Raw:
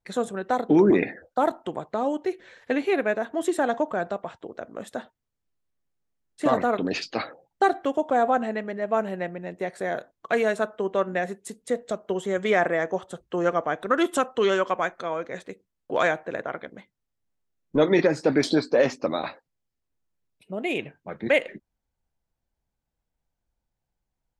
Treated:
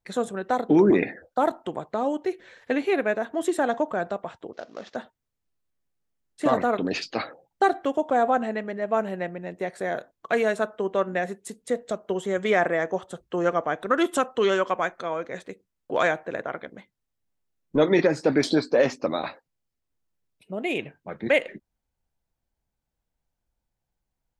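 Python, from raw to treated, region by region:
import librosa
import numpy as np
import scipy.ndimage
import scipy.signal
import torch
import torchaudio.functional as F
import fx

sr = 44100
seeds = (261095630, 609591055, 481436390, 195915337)

y = fx.chain(x, sr, fx.cvsd(bps=32000),
    fx.highpass(hz=320.0, slope=6), at=(4.53, 4.96))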